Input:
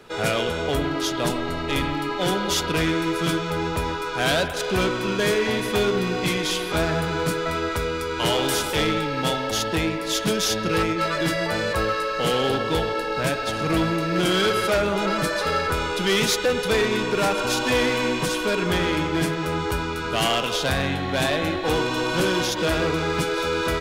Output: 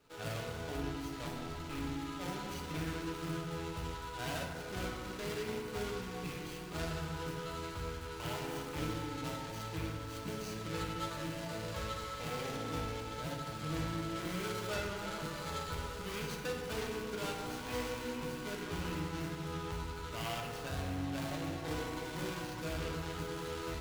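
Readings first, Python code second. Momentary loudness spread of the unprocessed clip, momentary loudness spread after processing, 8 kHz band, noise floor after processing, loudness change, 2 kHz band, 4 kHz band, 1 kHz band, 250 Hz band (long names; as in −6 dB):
4 LU, 3 LU, −17.5 dB, −44 dBFS, −17.0 dB, −18.5 dB, −19.5 dB, −16.5 dB, −16.0 dB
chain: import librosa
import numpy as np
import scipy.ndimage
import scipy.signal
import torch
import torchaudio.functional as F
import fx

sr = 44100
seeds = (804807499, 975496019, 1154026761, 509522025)

y = scipy.signal.medfilt(x, 25)
y = fx.tone_stack(y, sr, knobs='5-5-5')
y = fx.rev_fdn(y, sr, rt60_s=1.8, lf_ratio=1.3, hf_ratio=0.4, size_ms=20.0, drr_db=0.0)
y = y * 10.0 ** (-2.0 / 20.0)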